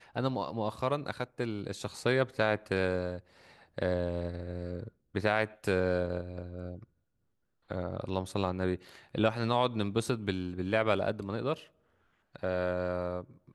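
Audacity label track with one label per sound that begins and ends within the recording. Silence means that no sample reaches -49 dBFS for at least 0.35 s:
7.700000	11.670000	sound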